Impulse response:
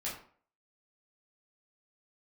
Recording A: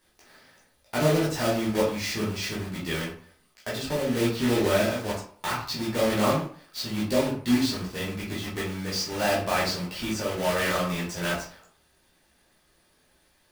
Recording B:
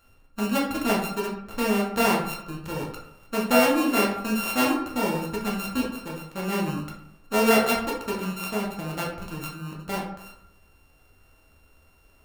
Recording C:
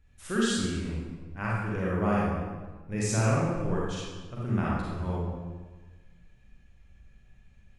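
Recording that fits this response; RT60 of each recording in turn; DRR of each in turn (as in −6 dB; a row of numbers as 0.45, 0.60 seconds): A; 0.50, 0.70, 1.4 seconds; −7.0, −3.0, −6.5 decibels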